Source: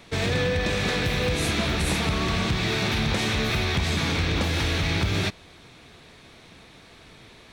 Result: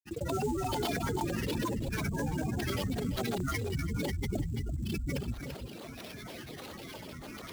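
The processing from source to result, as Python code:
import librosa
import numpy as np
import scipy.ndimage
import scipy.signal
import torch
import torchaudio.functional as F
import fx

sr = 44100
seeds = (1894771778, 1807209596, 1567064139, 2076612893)

p1 = fx.spec_gate(x, sr, threshold_db=-10, keep='strong')
p2 = fx.highpass(p1, sr, hz=250.0, slope=6)
p3 = fx.filter_lfo_notch(p2, sr, shape='saw_down', hz=8.7, low_hz=450.0, high_hz=2300.0, q=0.97)
p4 = fx.granulator(p3, sr, seeds[0], grain_ms=100.0, per_s=20.0, spray_ms=100.0, spread_st=12)
p5 = fx.sample_hold(p4, sr, seeds[1], rate_hz=7800.0, jitter_pct=20)
p6 = p5 + fx.echo_single(p5, sr, ms=338, db=-13.5, dry=0)
p7 = fx.env_flatten(p6, sr, amount_pct=50)
y = p7 * 10.0 ** (-2.0 / 20.0)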